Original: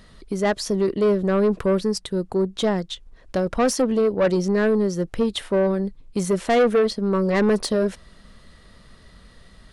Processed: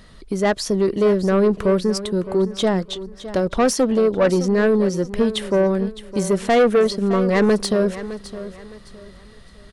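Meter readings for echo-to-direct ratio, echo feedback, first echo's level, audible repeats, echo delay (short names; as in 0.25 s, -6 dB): -13.5 dB, 31%, -14.0 dB, 3, 0.612 s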